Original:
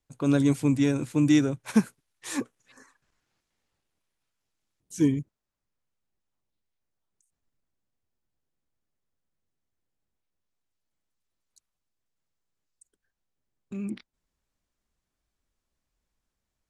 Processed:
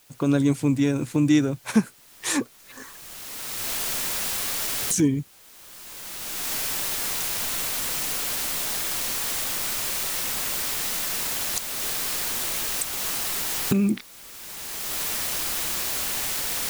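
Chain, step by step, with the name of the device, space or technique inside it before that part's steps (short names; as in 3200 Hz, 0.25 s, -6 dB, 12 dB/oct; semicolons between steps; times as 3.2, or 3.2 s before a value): cheap recorder with automatic gain (white noise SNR 27 dB; recorder AGC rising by 21 dB/s); gain +1.5 dB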